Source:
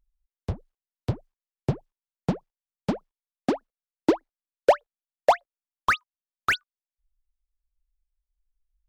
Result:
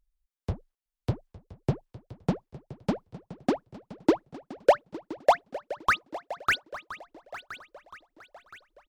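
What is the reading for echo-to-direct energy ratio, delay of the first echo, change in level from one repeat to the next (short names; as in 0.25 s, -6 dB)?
-14.0 dB, 0.859 s, no steady repeat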